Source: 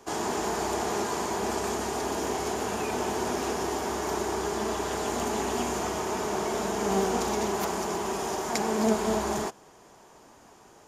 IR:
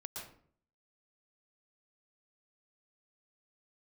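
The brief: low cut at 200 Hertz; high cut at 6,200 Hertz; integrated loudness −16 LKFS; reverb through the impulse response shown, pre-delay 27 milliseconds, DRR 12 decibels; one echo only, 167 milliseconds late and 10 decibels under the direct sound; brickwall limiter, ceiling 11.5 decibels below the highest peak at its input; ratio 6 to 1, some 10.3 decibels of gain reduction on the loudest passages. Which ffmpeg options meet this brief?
-filter_complex "[0:a]highpass=200,lowpass=6200,acompressor=threshold=-32dB:ratio=6,alimiter=level_in=7dB:limit=-24dB:level=0:latency=1,volume=-7dB,aecho=1:1:167:0.316,asplit=2[link_01][link_02];[1:a]atrim=start_sample=2205,adelay=27[link_03];[link_02][link_03]afir=irnorm=-1:irlink=0,volume=-10dB[link_04];[link_01][link_04]amix=inputs=2:normalize=0,volume=23dB"

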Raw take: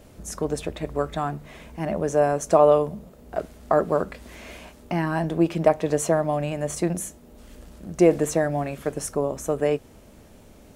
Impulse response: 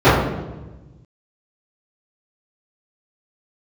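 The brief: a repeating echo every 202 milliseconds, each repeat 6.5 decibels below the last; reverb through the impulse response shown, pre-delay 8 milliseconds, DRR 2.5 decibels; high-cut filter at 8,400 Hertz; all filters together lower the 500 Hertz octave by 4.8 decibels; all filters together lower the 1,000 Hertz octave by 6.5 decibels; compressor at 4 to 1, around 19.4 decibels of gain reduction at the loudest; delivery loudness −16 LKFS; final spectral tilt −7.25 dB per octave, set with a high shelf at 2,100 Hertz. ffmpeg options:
-filter_complex "[0:a]lowpass=8400,equalizer=frequency=500:width_type=o:gain=-3.5,equalizer=frequency=1000:width_type=o:gain=-7,highshelf=frequency=2100:gain=-4,acompressor=threshold=-39dB:ratio=4,aecho=1:1:202|404|606|808|1010|1212:0.473|0.222|0.105|0.0491|0.0231|0.0109,asplit=2[link_01][link_02];[1:a]atrim=start_sample=2205,adelay=8[link_03];[link_02][link_03]afir=irnorm=-1:irlink=0,volume=-32.5dB[link_04];[link_01][link_04]amix=inputs=2:normalize=0,volume=20.5dB"

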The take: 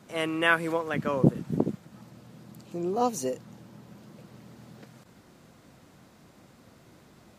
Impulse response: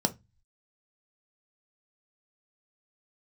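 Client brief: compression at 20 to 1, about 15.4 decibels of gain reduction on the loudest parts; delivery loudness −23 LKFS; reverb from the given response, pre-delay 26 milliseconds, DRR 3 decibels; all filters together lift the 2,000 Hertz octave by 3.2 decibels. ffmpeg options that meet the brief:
-filter_complex "[0:a]equalizer=frequency=2000:width_type=o:gain=4.5,acompressor=threshold=-29dB:ratio=20,asplit=2[link_01][link_02];[1:a]atrim=start_sample=2205,adelay=26[link_03];[link_02][link_03]afir=irnorm=-1:irlink=0,volume=-11dB[link_04];[link_01][link_04]amix=inputs=2:normalize=0,volume=10.5dB"

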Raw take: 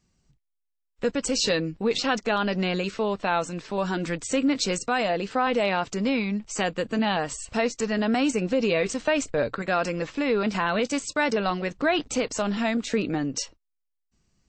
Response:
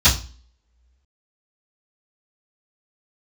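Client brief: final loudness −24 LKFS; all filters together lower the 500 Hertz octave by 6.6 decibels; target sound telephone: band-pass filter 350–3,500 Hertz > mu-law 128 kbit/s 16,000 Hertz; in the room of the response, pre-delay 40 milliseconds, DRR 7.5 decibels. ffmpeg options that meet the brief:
-filter_complex "[0:a]equalizer=frequency=500:width_type=o:gain=-7,asplit=2[link_01][link_02];[1:a]atrim=start_sample=2205,adelay=40[link_03];[link_02][link_03]afir=irnorm=-1:irlink=0,volume=-28dB[link_04];[link_01][link_04]amix=inputs=2:normalize=0,highpass=350,lowpass=3500,volume=6dB" -ar 16000 -c:a pcm_mulaw

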